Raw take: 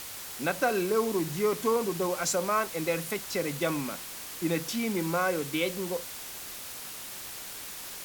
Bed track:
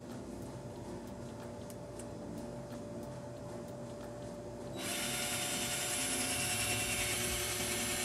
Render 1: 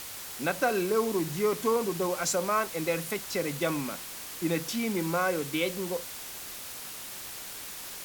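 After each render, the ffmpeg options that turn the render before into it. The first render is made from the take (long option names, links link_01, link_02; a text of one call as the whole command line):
ffmpeg -i in.wav -af anull out.wav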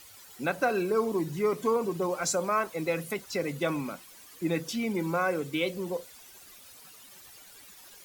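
ffmpeg -i in.wav -af "afftdn=noise_reduction=14:noise_floor=-41" out.wav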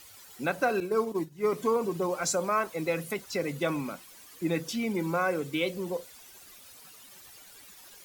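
ffmpeg -i in.wav -filter_complex "[0:a]asettb=1/sr,asplit=3[link_01][link_02][link_03];[link_01]atrim=end=0.804[link_04];[link_02]atrim=start=0.8:end=1.52,asetpts=PTS-STARTPTS,afade=type=in:duration=0.004:curve=qsin,afade=type=out:start_time=0.716:duration=0.004:curve=qsin,agate=range=-33dB:threshold=-26dB:ratio=3:release=100:detection=peak[link_05];[link_03]atrim=start=1.516[link_06];[link_04][link_05]acrossfade=duration=0.004:curve1=hsin:curve2=qsin[link_07];[link_07][link_06]acrossfade=duration=0.004:curve1=qsin:curve2=hsin" out.wav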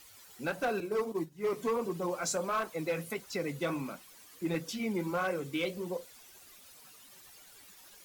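ffmpeg -i in.wav -af "flanger=delay=3.5:depth=8.3:regen=-44:speed=1.5:shape=triangular,asoftclip=type=hard:threshold=-25.5dB" out.wav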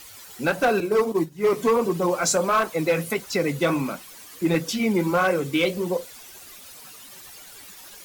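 ffmpeg -i in.wav -af "volume=11.5dB" out.wav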